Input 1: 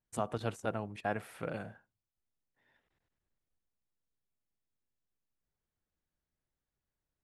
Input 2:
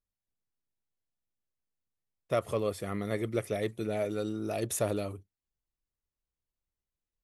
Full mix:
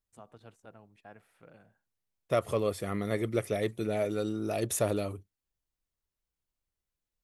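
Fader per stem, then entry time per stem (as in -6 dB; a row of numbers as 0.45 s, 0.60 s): -17.0 dB, +1.5 dB; 0.00 s, 0.00 s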